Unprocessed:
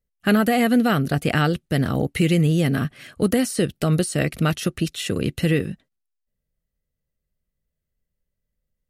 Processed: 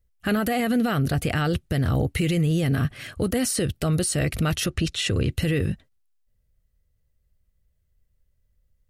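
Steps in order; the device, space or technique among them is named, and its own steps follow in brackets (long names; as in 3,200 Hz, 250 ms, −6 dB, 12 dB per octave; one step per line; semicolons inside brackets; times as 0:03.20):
car stereo with a boomy subwoofer (low shelf with overshoot 130 Hz +8 dB, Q 1.5; brickwall limiter −18.5 dBFS, peak gain reduction 10 dB)
0:04.66–0:05.31: low-pass filter 7,700 Hz 12 dB per octave
level +4 dB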